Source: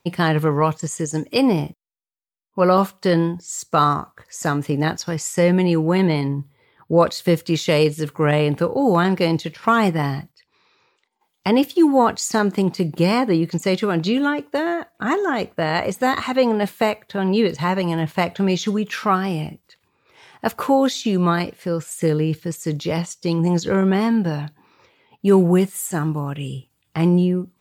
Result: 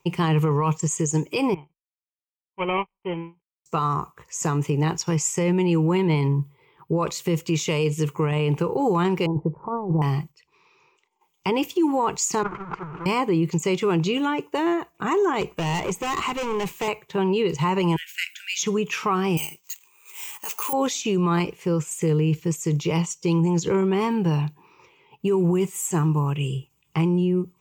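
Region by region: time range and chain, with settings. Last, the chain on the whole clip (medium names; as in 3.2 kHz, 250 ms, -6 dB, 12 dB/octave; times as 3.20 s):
1.54–3.66 s: dead-time distortion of 0.23 ms + rippled Chebyshev low-pass 3.2 kHz, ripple 9 dB + upward expansion 2.5:1, over -36 dBFS
9.26–10.02 s: steep low-pass 950 Hz + compressor with a negative ratio -22 dBFS, ratio -0.5
12.43–13.06 s: one-bit comparator + resonant low-pass 1.4 kHz, resonance Q 5.8 + gate -16 dBFS, range -20 dB
15.41–16.88 s: hard clipper -22.5 dBFS + three bands compressed up and down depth 40%
17.96–18.63 s: brick-wall FIR high-pass 1.4 kHz + treble shelf 8.9 kHz +10 dB
19.37–20.73 s: frequency weighting ITU-R 468 + careless resampling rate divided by 4×, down filtered, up zero stuff
whole clip: rippled EQ curve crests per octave 0.73, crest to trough 11 dB; peak limiter -13 dBFS; trim -1.5 dB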